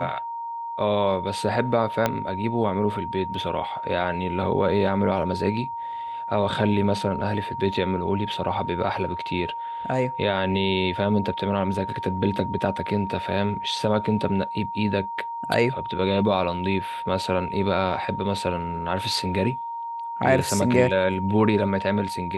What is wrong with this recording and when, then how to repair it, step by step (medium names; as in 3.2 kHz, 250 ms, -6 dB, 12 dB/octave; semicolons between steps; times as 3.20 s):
whine 930 Hz -29 dBFS
2.06 s: pop -7 dBFS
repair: de-click; band-stop 930 Hz, Q 30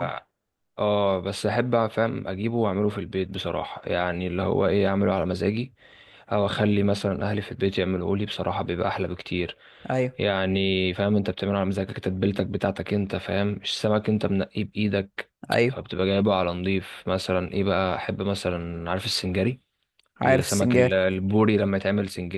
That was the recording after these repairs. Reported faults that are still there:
2.06 s: pop